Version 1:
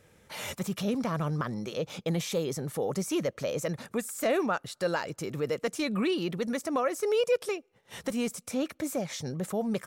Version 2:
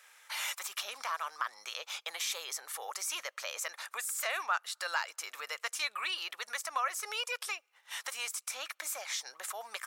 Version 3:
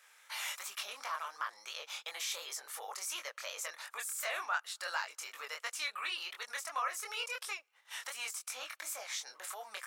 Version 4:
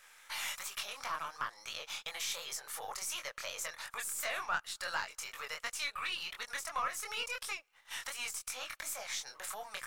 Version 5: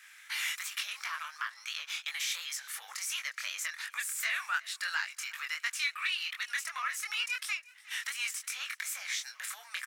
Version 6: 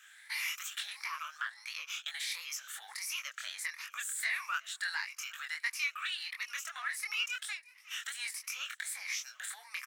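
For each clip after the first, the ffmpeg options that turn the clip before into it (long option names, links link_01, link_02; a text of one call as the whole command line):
ffmpeg -i in.wav -filter_complex "[0:a]highpass=frequency=960:width=0.5412,highpass=frequency=960:width=1.3066,asplit=2[link_01][link_02];[link_02]acompressor=threshold=-47dB:ratio=6,volume=1dB[link_03];[link_01][link_03]amix=inputs=2:normalize=0" out.wav
ffmpeg -i in.wav -af "flanger=delay=19.5:depth=5.7:speed=2.8" out.wav
ffmpeg -i in.wav -filter_complex "[0:a]aeval=exprs='if(lt(val(0),0),0.708*val(0),val(0))':channel_layout=same,asplit=2[link_01][link_02];[link_02]acompressor=threshold=-47dB:ratio=6,volume=-3dB[link_03];[link_01][link_03]amix=inputs=2:normalize=0" out.wav
ffmpeg -i in.wav -af "highpass=frequency=1800:width_type=q:width=1.8,aecho=1:1:358|716:0.0794|0.0278,volume=2dB" out.wav
ffmpeg -i in.wav -af "afftfilt=real='re*pow(10,10/40*sin(2*PI*(0.86*log(max(b,1)*sr/1024/100)/log(2)-(1.5)*(pts-256)/sr)))':imag='im*pow(10,10/40*sin(2*PI*(0.86*log(max(b,1)*sr/1024/100)/log(2)-(1.5)*(pts-256)/sr)))':win_size=1024:overlap=0.75,volume=-4dB" out.wav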